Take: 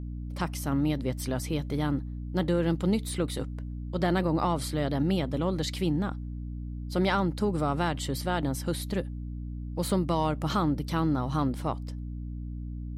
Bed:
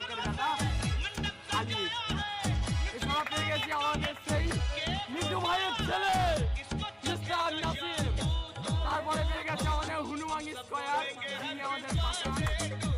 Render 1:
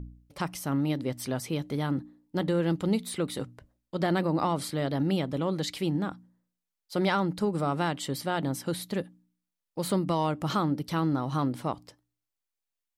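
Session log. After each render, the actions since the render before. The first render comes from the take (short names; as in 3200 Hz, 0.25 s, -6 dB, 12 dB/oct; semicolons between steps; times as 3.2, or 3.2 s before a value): de-hum 60 Hz, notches 5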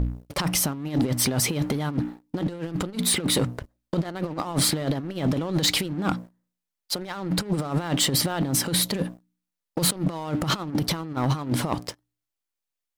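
negative-ratio compressor -34 dBFS, ratio -0.5; sample leveller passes 3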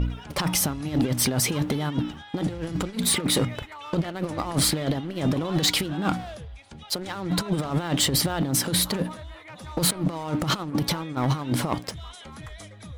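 add bed -9.5 dB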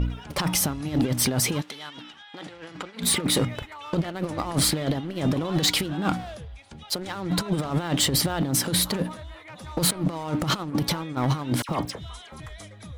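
1.6–3.01 band-pass 5100 Hz -> 1400 Hz, Q 0.6; 11.62–12.4 dispersion lows, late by 69 ms, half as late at 2100 Hz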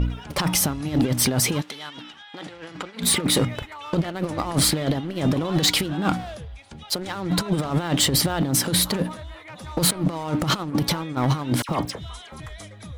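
gain +2.5 dB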